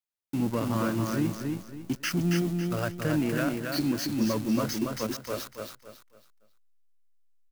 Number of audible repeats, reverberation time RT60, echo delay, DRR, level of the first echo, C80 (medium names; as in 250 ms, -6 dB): 4, no reverb, 276 ms, no reverb, -4.0 dB, no reverb